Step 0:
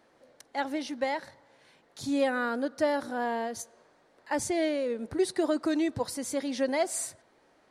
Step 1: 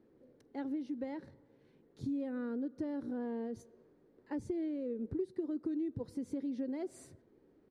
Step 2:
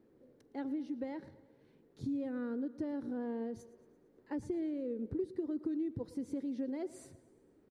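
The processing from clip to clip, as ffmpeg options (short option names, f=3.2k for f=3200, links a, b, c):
-af "firequalizer=gain_entry='entry(420,0);entry(630,-18);entry(7700,-27)':delay=0.05:min_phase=1,acompressor=threshold=-39dB:ratio=4,volume=3dB"
-af "aecho=1:1:113|226|339|452|565:0.112|0.0628|0.0352|0.0197|0.011"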